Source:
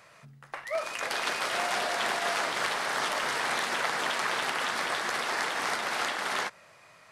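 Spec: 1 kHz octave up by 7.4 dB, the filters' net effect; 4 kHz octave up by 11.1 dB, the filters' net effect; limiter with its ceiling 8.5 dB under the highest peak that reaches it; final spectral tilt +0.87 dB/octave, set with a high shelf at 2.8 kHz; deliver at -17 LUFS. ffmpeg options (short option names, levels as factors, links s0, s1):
-af "equalizer=f=1000:t=o:g=8,highshelf=f=2800:g=5.5,equalizer=f=4000:t=o:g=9,volume=2.24,alimiter=limit=0.422:level=0:latency=1"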